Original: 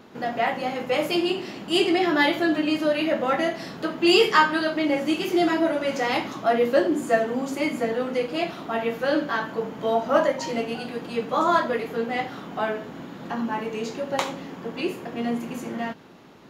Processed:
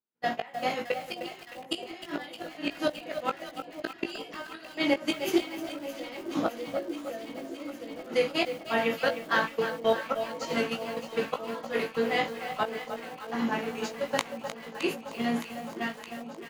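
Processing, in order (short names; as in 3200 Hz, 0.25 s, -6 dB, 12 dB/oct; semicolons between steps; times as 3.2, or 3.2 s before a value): 5.47–7.98 small resonant body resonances 290/510 Hz, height 15 dB, ringing for 40 ms; gate -28 dBFS, range -50 dB; tilt shelf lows -3.5 dB, about 1300 Hz; flipped gate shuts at -15 dBFS, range -25 dB; doubler 18 ms -6 dB; echo with dull and thin repeats by turns 0.308 s, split 990 Hz, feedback 88%, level -11.5 dB; lo-fi delay 0.307 s, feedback 35%, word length 7-bit, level -11 dB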